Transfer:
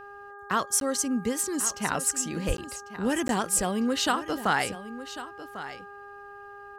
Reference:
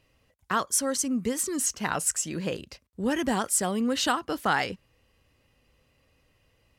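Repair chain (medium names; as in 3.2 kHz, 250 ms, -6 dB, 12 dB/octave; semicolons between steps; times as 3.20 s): de-hum 404.6 Hz, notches 4; de-plosive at 2.47 s; interpolate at 0.80/2.57/3.28 s, 12 ms; inverse comb 1097 ms -13.5 dB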